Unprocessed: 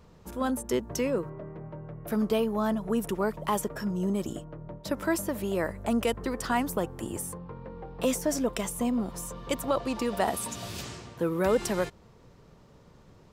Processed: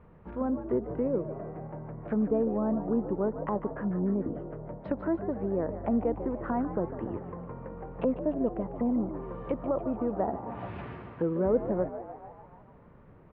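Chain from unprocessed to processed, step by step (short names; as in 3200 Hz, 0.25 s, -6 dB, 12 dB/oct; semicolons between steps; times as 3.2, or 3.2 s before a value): treble ducked by the level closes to 680 Hz, closed at -27.5 dBFS; inverse Chebyshev low-pass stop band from 8600 Hz, stop band 70 dB; frequency-shifting echo 0.148 s, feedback 61%, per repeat +71 Hz, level -12 dB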